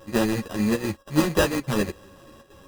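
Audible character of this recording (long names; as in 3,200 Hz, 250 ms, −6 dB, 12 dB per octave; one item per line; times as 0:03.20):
a buzz of ramps at a fixed pitch in blocks of 16 samples
chopped level 1.2 Hz, depth 60%, duty 90%
aliases and images of a low sample rate 2,200 Hz, jitter 0%
a shimmering, thickened sound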